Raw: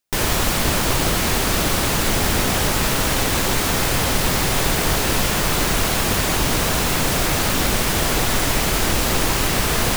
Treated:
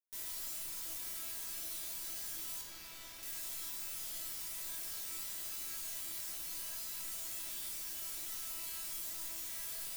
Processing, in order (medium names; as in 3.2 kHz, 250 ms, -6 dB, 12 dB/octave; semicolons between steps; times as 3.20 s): 2.61–3.23 s: median filter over 5 samples; pre-emphasis filter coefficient 0.9; feedback comb 330 Hz, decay 0.64 s, mix 90%; trim -4.5 dB